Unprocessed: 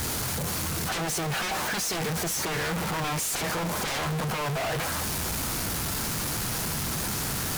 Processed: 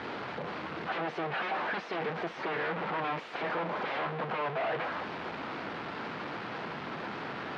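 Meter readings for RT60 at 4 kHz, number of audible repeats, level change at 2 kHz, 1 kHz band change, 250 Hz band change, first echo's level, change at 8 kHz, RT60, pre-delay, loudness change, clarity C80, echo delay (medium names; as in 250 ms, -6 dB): no reverb, no echo, -3.5 dB, -1.5 dB, -7.0 dB, no echo, under -35 dB, no reverb, no reverb, -7.0 dB, no reverb, no echo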